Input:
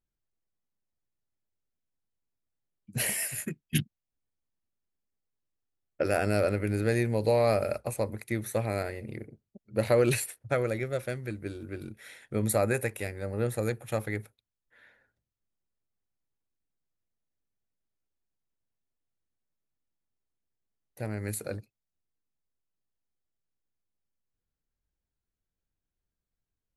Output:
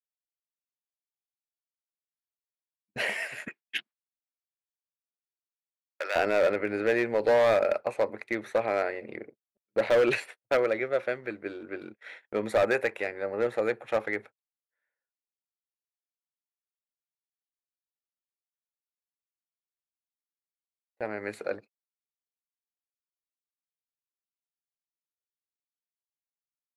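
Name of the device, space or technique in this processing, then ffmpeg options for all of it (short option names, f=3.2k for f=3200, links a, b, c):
walkie-talkie: -filter_complex "[0:a]highpass=440,lowpass=2.5k,asoftclip=type=hard:threshold=-25dB,agate=range=-32dB:threshold=-52dB:ratio=16:detection=peak,asettb=1/sr,asplit=3[a][b][c];[a]atrim=end=3.484[d];[b]atrim=start=3.48:end=6.16,asetpts=PTS-STARTPTS,afade=t=in:d=0.004:c=qsin,afade=t=out:st=2.676:d=0.004:c=qsin,highpass=1k[e];[c]atrim=start=6.156[f];[d][e]acrossfade=d=0.004:c1=hsin:c2=qsin[g];[g][f]acrossfade=d=0.004:c1=qsin:c2=hsin,volume=7dB"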